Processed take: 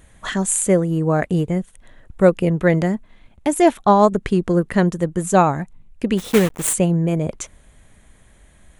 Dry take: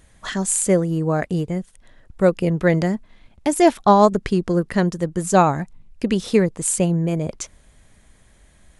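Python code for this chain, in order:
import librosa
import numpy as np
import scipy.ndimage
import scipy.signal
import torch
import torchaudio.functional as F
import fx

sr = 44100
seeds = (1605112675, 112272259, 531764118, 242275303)

p1 = fx.block_float(x, sr, bits=3, at=(6.17, 6.72), fade=0.02)
p2 = fx.peak_eq(p1, sr, hz=5000.0, db=-8.5, octaves=0.52)
p3 = fx.rider(p2, sr, range_db=4, speed_s=0.5)
p4 = p2 + F.gain(torch.from_numpy(p3), 0.0).numpy()
y = F.gain(torch.from_numpy(p4), -4.5).numpy()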